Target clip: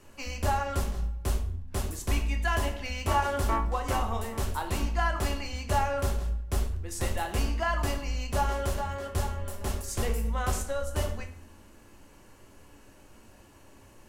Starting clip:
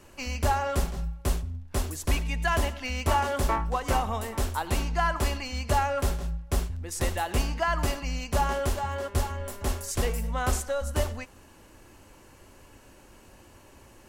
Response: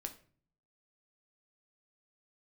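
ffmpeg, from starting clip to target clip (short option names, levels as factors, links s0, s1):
-filter_complex "[1:a]atrim=start_sample=2205,asetrate=32193,aresample=44100[s0];[0:a][s0]afir=irnorm=-1:irlink=0,volume=0.841"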